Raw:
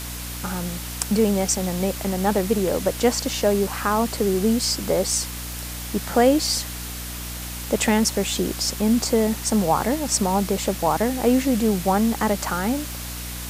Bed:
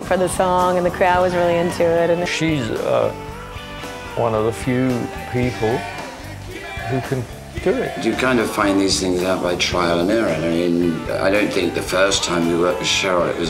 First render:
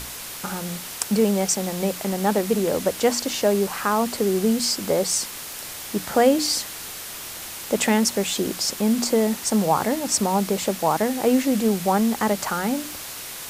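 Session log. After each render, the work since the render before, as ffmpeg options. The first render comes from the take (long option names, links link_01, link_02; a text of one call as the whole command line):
ffmpeg -i in.wav -af "bandreject=frequency=60:width_type=h:width=6,bandreject=frequency=120:width_type=h:width=6,bandreject=frequency=180:width_type=h:width=6,bandreject=frequency=240:width_type=h:width=6,bandreject=frequency=300:width_type=h:width=6" out.wav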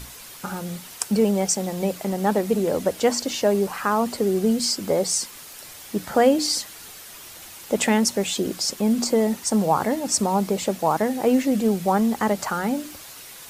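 ffmpeg -i in.wav -af "afftdn=noise_reduction=8:noise_floor=-35" out.wav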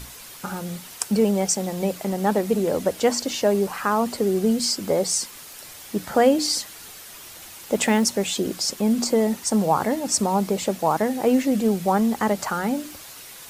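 ffmpeg -i in.wav -filter_complex "[0:a]asettb=1/sr,asplit=3[link_01][link_02][link_03];[link_01]atrim=end=7.544[link_04];[link_02]atrim=start=7.54:end=8.09,asetpts=PTS-STARTPTS,afade=type=in:duration=0.004:curve=qsin,afade=type=out:start_time=0.546:duration=0.004:curve=qsin,acrusher=bits=8:mode=log:mix=0:aa=0.000001[link_05];[link_03]atrim=start=8.086[link_06];[link_04][link_05]acrossfade=duration=0.004:curve1=hsin:curve2=qsin[link_07];[link_07][link_06]acrossfade=duration=0.004:curve1=qsin:curve2=hsin" out.wav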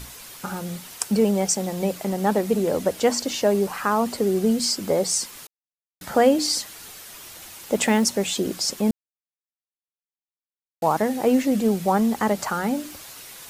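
ffmpeg -i in.wav -filter_complex "[0:a]asplit=5[link_01][link_02][link_03][link_04][link_05];[link_01]atrim=end=5.47,asetpts=PTS-STARTPTS,afade=type=out:start_time=5.466:duration=0.004:curve=hsin[link_06];[link_02]atrim=start=5.47:end=6.01,asetpts=PTS-STARTPTS,volume=0[link_07];[link_03]atrim=start=6.01:end=8.91,asetpts=PTS-STARTPTS,afade=type=in:duration=0.004:curve=hsin,afade=type=out:start_time=2.896:duration=0.004:curve=hsin[link_08];[link_04]atrim=start=8.91:end=10.82,asetpts=PTS-STARTPTS,volume=0[link_09];[link_05]atrim=start=10.82,asetpts=PTS-STARTPTS,afade=type=in:duration=0.004:curve=hsin[link_10];[link_06][link_07][link_08][link_09][link_10]concat=n=5:v=0:a=1" out.wav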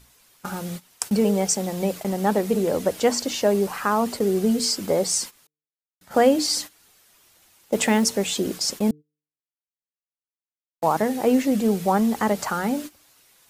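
ffmpeg -i in.wav -af "bandreject=frequency=149.7:width_type=h:width=4,bandreject=frequency=299.4:width_type=h:width=4,bandreject=frequency=449.1:width_type=h:width=4,agate=range=-16dB:threshold=-32dB:ratio=16:detection=peak" out.wav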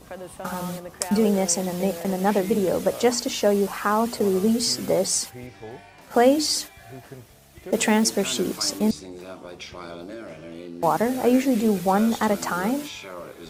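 ffmpeg -i in.wav -i bed.wav -filter_complex "[1:a]volume=-20dB[link_01];[0:a][link_01]amix=inputs=2:normalize=0" out.wav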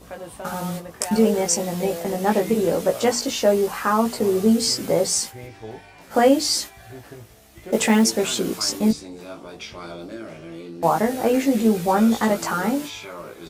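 ffmpeg -i in.wav -filter_complex "[0:a]asplit=2[link_01][link_02];[link_02]adelay=18,volume=-3dB[link_03];[link_01][link_03]amix=inputs=2:normalize=0" out.wav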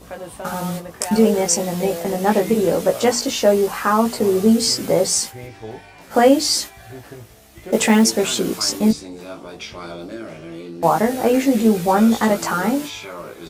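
ffmpeg -i in.wav -af "volume=3dB,alimiter=limit=-2dB:level=0:latency=1" out.wav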